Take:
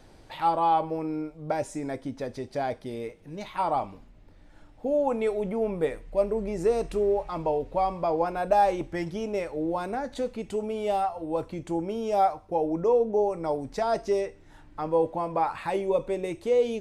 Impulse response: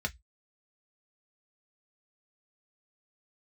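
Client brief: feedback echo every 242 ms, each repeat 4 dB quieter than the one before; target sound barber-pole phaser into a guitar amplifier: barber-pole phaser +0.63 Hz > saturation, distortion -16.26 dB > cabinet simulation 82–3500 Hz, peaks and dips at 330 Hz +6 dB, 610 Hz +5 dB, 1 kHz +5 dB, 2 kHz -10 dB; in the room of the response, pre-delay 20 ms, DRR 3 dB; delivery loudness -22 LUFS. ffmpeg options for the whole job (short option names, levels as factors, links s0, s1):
-filter_complex "[0:a]aecho=1:1:242|484|726|968|1210|1452|1694|1936|2178:0.631|0.398|0.25|0.158|0.0994|0.0626|0.0394|0.0249|0.0157,asplit=2[s0][s1];[1:a]atrim=start_sample=2205,adelay=20[s2];[s1][s2]afir=irnorm=-1:irlink=0,volume=0.422[s3];[s0][s3]amix=inputs=2:normalize=0,asplit=2[s4][s5];[s5]afreqshift=0.63[s6];[s4][s6]amix=inputs=2:normalize=1,asoftclip=threshold=0.126,highpass=82,equalizer=f=330:t=q:w=4:g=6,equalizer=f=610:t=q:w=4:g=5,equalizer=f=1000:t=q:w=4:g=5,equalizer=f=2000:t=q:w=4:g=-10,lowpass=f=3500:w=0.5412,lowpass=f=3500:w=1.3066,volume=1.58"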